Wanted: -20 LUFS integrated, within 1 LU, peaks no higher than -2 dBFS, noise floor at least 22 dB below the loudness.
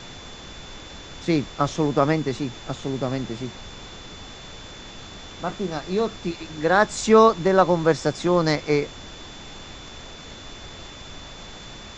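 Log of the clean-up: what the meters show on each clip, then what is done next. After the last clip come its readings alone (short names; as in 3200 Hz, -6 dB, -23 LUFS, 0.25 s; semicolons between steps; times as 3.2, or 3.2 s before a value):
steady tone 3500 Hz; tone level -44 dBFS; noise floor -41 dBFS; noise floor target -44 dBFS; loudness -22.0 LUFS; peak -3.5 dBFS; loudness target -20.0 LUFS
-> notch 3500 Hz, Q 30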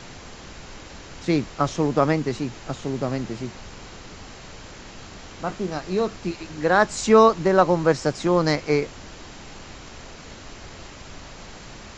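steady tone none; noise floor -42 dBFS; noise floor target -45 dBFS
-> noise print and reduce 6 dB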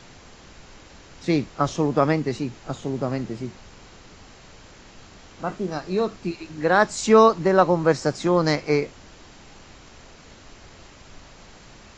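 noise floor -48 dBFS; loudness -22.0 LUFS; peak -3.0 dBFS; loudness target -20.0 LUFS
-> gain +2 dB; limiter -2 dBFS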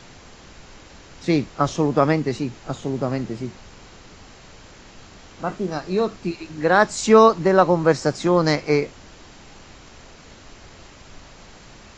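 loudness -20.5 LUFS; peak -2.0 dBFS; noise floor -46 dBFS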